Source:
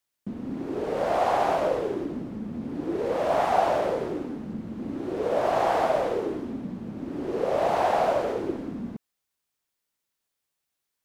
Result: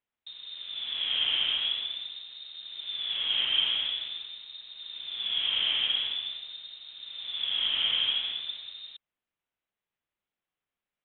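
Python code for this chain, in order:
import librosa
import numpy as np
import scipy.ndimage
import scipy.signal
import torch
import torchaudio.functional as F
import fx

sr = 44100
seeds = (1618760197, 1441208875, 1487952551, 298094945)

y = fx.peak_eq(x, sr, hz=120.0, db=-13.0, octaves=2.3)
y = fx.freq_invert(y, sr, carrier_hz=3900)
y = F.gain(torch.from_numpy(y), -3.0).numpy()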